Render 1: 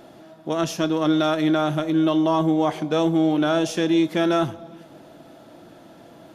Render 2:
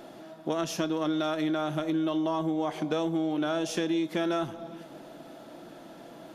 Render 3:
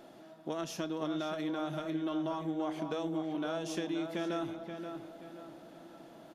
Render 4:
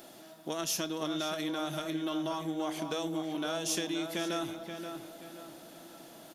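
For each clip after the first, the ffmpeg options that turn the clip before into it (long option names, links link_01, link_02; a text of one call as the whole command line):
ffmpeg -i in.wav -af "acompressor=threshold=-25dB:ratio=6,equalizer=frequency=86:width_type=o:width=0.79:gain=-14" out.wav
ffmpeg -i in.wav -filter_complex "[0:a]asplit=2[link_01][link_02];[link_02]adelay=528,lowpass=frequency=2900:poles=1,volume=-7dB,asplit=2[link_03][link_04];[link_04]adelay=528,lowpass=frequency=2900:poles=1,volume=0.42,asplit=2[link_05][link_06];[link_06]adelay=528,lowpass=frequency=2900:poles=1,volume=0.42,asplit=2[link_07][link_08];[link_08]adelay=528,lowpass=frequency=2900:poles=1,volume=0.42,asplit=2[link_09][link_10];[link_10]adelay=528,lowpass=frequency=2900:poles=1,volume=0.42[link_11];[link_01][link_03][link_05][link_07][link_09][link_11]amix=inputs=6:normalize=0,volume=-7.5dB" out.wav
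ffmpeg -i in.wav -af "crystalizer=i=4.5:c=0" out.wav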